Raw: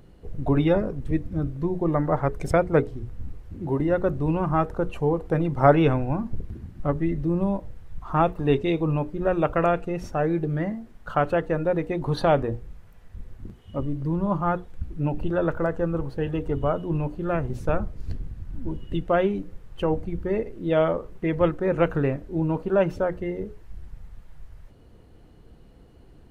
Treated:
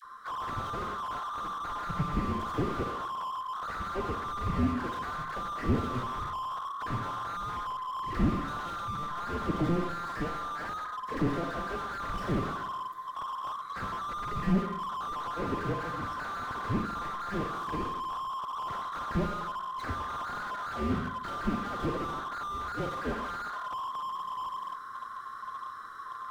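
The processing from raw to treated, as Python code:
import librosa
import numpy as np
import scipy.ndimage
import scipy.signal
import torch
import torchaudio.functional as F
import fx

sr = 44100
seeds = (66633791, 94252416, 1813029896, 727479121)

p1 = fx.band_swap(x, sr, width_hz=1000)
p2 = fx.env_flanger(p1, sr, rest_ms=10.6, full_db=-21.0)
p3 = fx.peak_eq(p2, sr, hz=2600.0, db=-9.5, octaves=0.25)
p4 = fx.rider(p3, sr, range_db=10, speed_s=2.0)
p5 = p3 + F.gain(torch.from_numpy(p4), -2.0).numpy()
p6 = fx.dispersion(p5, sr, late='lows', ms=50.0, hz=930.0)
p7 = 10.0 ** (-15.5 / 20.0) * np.tanh(p6 / 10.0 ** (-15.5 / 20.0))
p8 = fx.rev_schroeder(p7, sr, rt60_s=0.8, comb_ms=32, drr_db=5.0)
y = fx.slew_limit(p8, sr, full_power_hz=21.0)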